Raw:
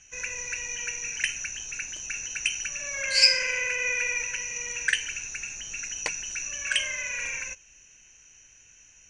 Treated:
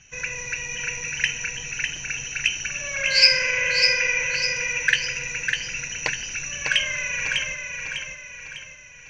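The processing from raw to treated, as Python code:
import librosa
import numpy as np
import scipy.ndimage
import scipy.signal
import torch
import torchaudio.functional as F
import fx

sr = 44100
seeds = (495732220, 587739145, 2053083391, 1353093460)

p1 = scipy.signal.sosfilt(scipy.signal.butter(4, 5400.0, 'lowpass', fs=sr, output='sos'), x)
p2 = fx.peak_eq(p1, sr, hz=140.0, db=13.5, octaves=0.46)
p3 = p2 + fx.echo_feedback(p2, sr, ms=601, feedback_pct=44, wet_db=-5.0, dry=0)
y = p3 * 10.0 ** (5.0 / 20.0)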